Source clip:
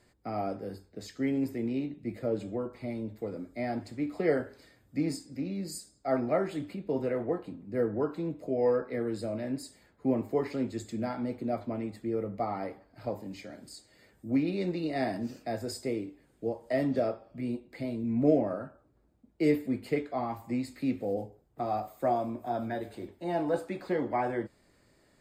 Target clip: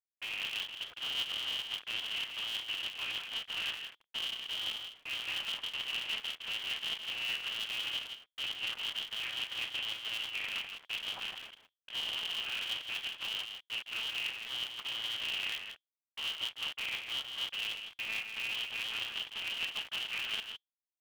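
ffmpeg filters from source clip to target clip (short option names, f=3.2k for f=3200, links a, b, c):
-af "agate=range=-36dB:threshold=-55dB:ratio=16:detection=peak,areverse,acompressor=threshold=-38dB:ratio=20,areverse,aeval=exprs='val(0)+0.000251*(sin(2*PI*50*n/s)+sin(2*PI*2*50*n/s)/2+sin(2*PI*3*50*n/s)/3+sin(2*PI*4*50*n/s)/4+sin(2*PI*5*50*n/s)/5)':c=same,atempo=1.2,acrusher=bits=7:mix=0:aa=0.000001,aecho=1:1:161:0.447,lowpass=f=2.8k:t=q:w=0.5098,lowpass=f=2.8k:t=q:w=0.6013,lowpass=f=2.8k:t=q:w=0.9,lowpass=f=2.8k:t=q:w=2.563,afreqshift=-3300,aeval=exprs='val(0)*sgn(sin(2*PI*110*n/s))':c=same,volume=3.5dB"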